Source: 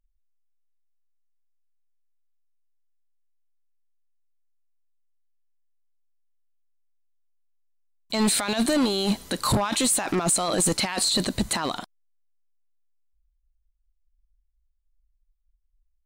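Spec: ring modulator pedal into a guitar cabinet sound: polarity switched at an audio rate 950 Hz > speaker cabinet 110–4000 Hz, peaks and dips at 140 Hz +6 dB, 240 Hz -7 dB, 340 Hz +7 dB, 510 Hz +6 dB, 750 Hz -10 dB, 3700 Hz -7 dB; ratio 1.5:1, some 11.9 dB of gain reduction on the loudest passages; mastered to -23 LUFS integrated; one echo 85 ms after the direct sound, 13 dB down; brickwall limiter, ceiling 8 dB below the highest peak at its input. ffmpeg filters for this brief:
-af "acompressor=threshold=-54dB:ratio=1.5,alimiter=level_in=8.5dB:limit=-24dB:level=0:latency=1,volume=-8.5dB,aecho=1:1:85:0.224,aeval=exprs='val(0)*sgn(sin(2*PI*950*n/s))':c=same,highpass=110,equalizer=f=140:t=q:w=4:g=6,equalizer=f=240:t=q:w=4:g=-7,equalizer=f=340:t=q:w=4:g=7,equalizer=f=510:t=q:w=4:g=6,equalizer=f=750:t=q:w=4:g=-10,equalizer=f=3.7k:t=q:w=4:g=-7,lowpass=f=4k:w=0.5412,lowpass=f=4k:w=1.3066,volume=18dB"

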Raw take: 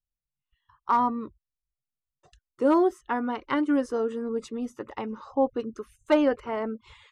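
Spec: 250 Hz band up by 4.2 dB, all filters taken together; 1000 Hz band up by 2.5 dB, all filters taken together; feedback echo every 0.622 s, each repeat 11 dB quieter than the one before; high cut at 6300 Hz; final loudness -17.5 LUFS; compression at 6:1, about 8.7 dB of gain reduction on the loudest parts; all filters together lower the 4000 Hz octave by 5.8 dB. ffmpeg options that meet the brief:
-af "lowpass=6.3k,equalizer=f=250:t=o:g=5,equalizer=f=1k:t=o:g=3,equalizer=f=4k:t=o:g=-9,acompressor=threshold=-24dB:ratio=6,aecho=1:1:622|1244|1866:0.282|0.0789|0.0221,volume=13dB"

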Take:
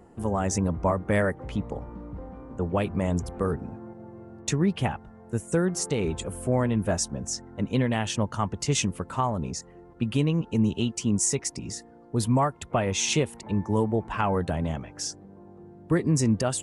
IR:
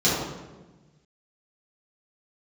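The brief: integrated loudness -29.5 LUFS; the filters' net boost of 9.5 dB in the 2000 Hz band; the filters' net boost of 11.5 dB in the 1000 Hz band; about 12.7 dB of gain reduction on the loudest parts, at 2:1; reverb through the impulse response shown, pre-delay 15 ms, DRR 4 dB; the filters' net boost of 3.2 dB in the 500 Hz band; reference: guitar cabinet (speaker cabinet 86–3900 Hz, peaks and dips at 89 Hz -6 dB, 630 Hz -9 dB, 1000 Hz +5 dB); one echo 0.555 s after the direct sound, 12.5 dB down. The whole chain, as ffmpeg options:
-filter_complex "[0:a]equalizer=f=500:t=o:g=4.5,equalizer=f=1k:t=o:g=8.5,equalizer=f=2k:t=o:g=9,acompressor=threshold=-36dB:ratio=2,aecho=1:1:555:0.237,asplit=2[a][b];[1:a]atrim=start_sample=2205,adelay=15[c];[b][c]afir=irnorm=-1:irlink=0,volume=-21dB[d];[a][d]amix=inputs=2:normalize=0,highpass=86,equalizer=f=89:t=q:w=4:g=-6,equalizer=f=630:t=q:w=4:g=-9,equalizer=f=1k:t=q:w=4:g=5,lowpass=f=3.9k:w=0.5412,lowpass=f=3.9k:w=1.3066,volume=1.5dB"

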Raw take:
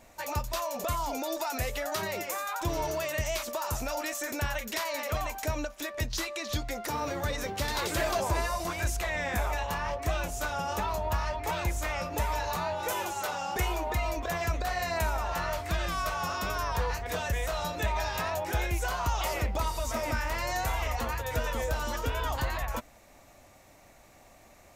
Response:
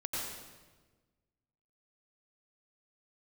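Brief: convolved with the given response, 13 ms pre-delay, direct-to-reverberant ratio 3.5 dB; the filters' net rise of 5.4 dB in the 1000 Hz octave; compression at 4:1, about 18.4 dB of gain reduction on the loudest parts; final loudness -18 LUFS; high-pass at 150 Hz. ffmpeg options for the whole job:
-filter_complex "[0:a]highpass=150,equalizer=f=1k:t=o:g=6.5,acompressor=threshold=-47dB:ratio=4,asplit=2[a][b];[1:a]atrim=start_sample=2205,adelay=13[c];[b][c]afir=irnorm=-1:irlink=0,volume=-7dB[d];[a][d]amix=inputs=2:normalize=0,volume=26.5dB"

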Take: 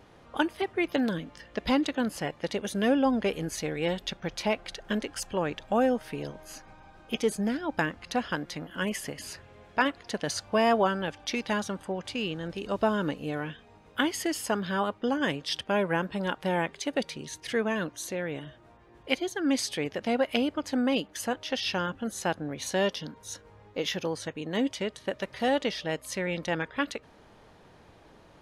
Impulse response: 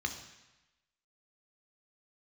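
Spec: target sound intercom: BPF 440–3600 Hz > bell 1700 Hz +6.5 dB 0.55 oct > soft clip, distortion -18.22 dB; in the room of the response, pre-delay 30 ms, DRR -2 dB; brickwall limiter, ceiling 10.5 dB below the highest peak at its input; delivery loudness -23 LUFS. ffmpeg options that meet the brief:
-filter_complex "[0:a]alimiter=limit=-19.5dB:level=0:latency=1,asplit=2[a][b];[1:a]atrim=start_sample=2205,adelay=30[c];[b][c]afir=irnorm=-1:irlink=0,volume=-1.5dB[d];[a][d]amix=inputs=2:normalize=0,highpass=440,lowpass=3.6k,equalizer=f=1.7k:t=o:w=0.55:g=6.5,asoftclip=threshold=-20dB,volume=8dB"

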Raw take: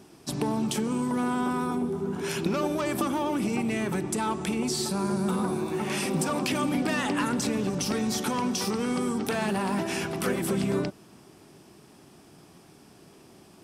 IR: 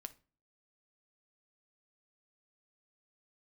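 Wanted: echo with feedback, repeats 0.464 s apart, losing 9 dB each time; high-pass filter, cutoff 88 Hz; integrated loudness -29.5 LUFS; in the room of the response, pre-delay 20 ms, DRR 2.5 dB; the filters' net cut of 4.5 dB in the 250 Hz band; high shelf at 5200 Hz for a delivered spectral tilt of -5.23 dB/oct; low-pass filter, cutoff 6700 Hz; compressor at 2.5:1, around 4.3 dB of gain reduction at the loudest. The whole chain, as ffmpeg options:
-filter_complex "[0:a]highpass=88,lowpass=6.7k,equalizer=f=250:t=o:g=-5.5,highshelf=f=5.2k:g=-7.5,acompressor=threshold=-32dB:ratio=2.5,aecho=1:1:464|928|1392|1856:0.355|0.124|0.0435|0.0152,asplit=2[a][b];[1:a]atrim=start_sample=2205,adelay=20[c];[b][c]afir=irnorm=-1:irlink=0,volume=2.5dB[d];[a][d]amix=inputs=2:normalize=0,volume=2.5dB"

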